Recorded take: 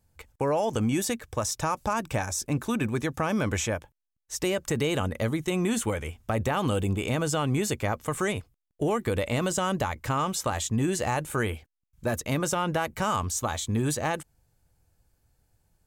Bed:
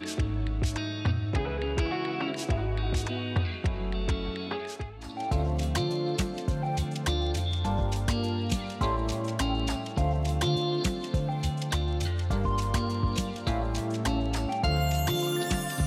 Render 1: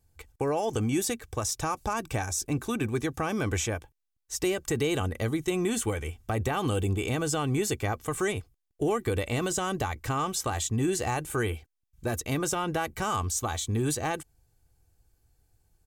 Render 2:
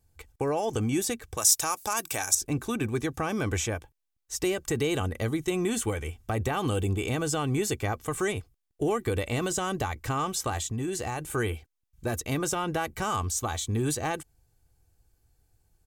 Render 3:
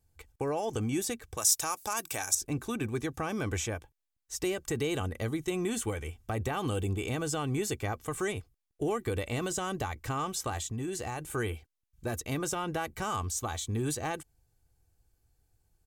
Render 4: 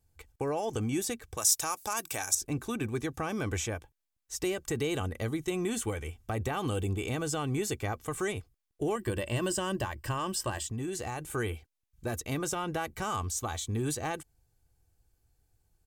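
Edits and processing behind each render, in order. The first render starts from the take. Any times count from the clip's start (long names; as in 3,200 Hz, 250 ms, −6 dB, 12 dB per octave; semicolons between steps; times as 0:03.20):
parametric band 1,100 Hz −3.5 dB 2.9 octaves; comb filter 2.6 ms, depth 40%
0:01.37–0:02.35: RIAA equalisation recording; 0:10.57–0:11.25: downward compressor 2.5 to 1, threshold −29 dBFS
level −4 dB
0:08.95–0:10.67: EQ curve with evenly spaced ripples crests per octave 1.3, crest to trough 10 dB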